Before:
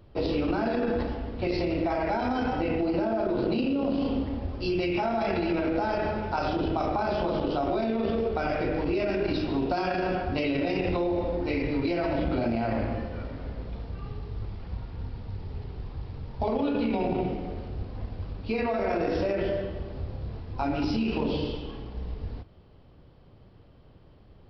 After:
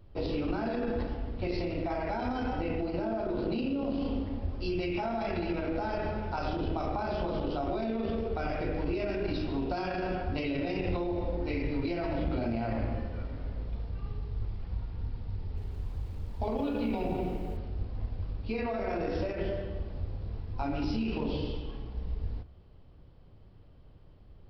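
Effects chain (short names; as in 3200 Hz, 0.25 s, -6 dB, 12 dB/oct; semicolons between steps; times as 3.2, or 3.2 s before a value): low shelf 83 Hz +10 dB; de-hum 65.56 Hz, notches 28; 15.4–17.57 lo-fi delay 0.169 s, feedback 55%, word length 8-bit, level -12.5 dB; gain -5.5 dB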